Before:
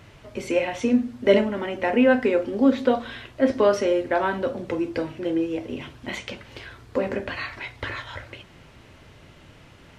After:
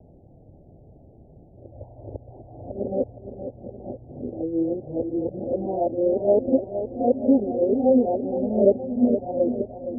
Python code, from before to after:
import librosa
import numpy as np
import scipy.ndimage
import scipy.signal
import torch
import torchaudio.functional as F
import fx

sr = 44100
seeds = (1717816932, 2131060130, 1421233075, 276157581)

y = np.flip(x).copy()
y = scipy.signal.sosfilt(scipy.signal.butter(16, 790.0, 'lowpass', fs=sr, output='sos'), y)
y = fx.echo_feedback(y, sr, ms=467, feedback_pct=53, wet_db=-10.0)